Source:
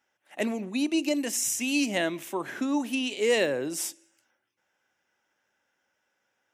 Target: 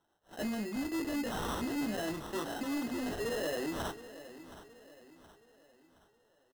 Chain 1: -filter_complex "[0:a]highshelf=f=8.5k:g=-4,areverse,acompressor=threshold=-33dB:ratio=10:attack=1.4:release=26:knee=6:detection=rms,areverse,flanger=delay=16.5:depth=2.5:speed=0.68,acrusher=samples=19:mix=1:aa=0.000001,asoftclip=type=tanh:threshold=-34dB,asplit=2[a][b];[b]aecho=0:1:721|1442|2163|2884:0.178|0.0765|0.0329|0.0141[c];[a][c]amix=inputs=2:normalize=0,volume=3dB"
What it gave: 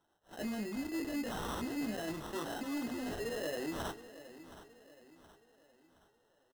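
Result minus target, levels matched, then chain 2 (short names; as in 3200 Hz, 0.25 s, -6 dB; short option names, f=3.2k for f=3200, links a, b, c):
compressor: peak gain reduction +6.5 dB
-filter_complex "[0:a]highshelf=f=8.5k:g=-4,areverse,acompressor=threshold=-26dB:ratio=10:attack=1.4:release=26:knee=6:detection=rms,areverse,flanger=delay=16.5:depth=2.5:speed=0.68,acrusher=samples=19:mix=1:aa=0.000001,asoftclip=type=tanh:threshold=-34dB,asplit=2[a][b];[b]aecho=0:1:721|1442|2163|2884:0.178|0.0765|0.0329|0.0141[c];[a][c]amix=inputs=2:normalize=0,volume=3dB"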